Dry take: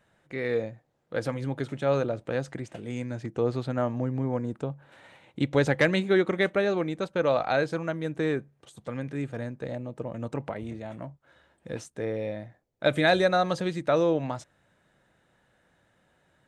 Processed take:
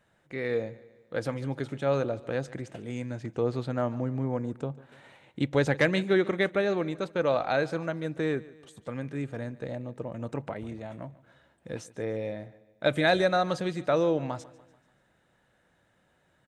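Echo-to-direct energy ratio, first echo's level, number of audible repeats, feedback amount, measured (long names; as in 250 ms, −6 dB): −19.0 dB, −20.0 dB, 3, 49%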